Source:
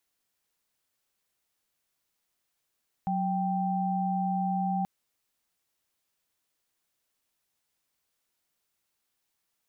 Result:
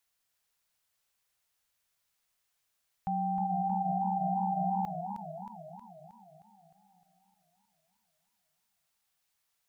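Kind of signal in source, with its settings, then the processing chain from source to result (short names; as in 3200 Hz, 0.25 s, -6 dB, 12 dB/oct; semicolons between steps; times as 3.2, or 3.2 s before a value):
chord F#3/G5 sine, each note -28.5 dBFS 1.78 s
bell 300 Hz -10.5 dB 1.2 oct; warbling echo 0.311 s, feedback 58%, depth 158 cents, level -8 dB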